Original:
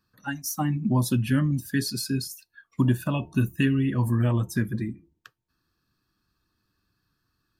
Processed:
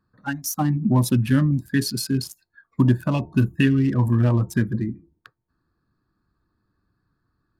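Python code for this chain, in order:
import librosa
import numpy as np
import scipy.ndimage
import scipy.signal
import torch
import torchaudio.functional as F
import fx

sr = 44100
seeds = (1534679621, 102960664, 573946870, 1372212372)

y = fx.wiener(x, sr, points=15)
y = y * librosa.db_to_amplitude(4.5)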